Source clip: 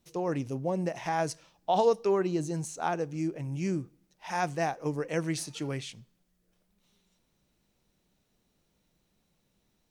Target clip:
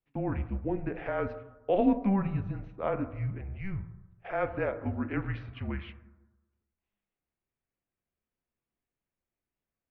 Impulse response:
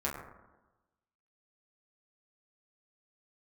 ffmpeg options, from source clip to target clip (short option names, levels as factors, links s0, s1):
-filter_complex "[0:a]highpass=f=210:t=q:w=0.5412,highpass=f=210:t=q:w=1.307,lowpass=f=2900:t=q:w=0.5176,lowpass=f=2900:t=q:w=0.7071,lowpass=f=2900:t=q:w=1.932,afreqshift=-200,agate=range=0.2:threshold=0.00398:ratio=16:detection=peak,asplit=2[s0][s1];[1:a]atrim=start_sample=2205[s2];[s1][s2]afir=irnorm=-1:irlink=0,volume=0.266[s3];[s0][s3]amix=inputs=2:normalize=0,volume=0.794" -ar 44100 -c:a libmp3lame -b:a 48k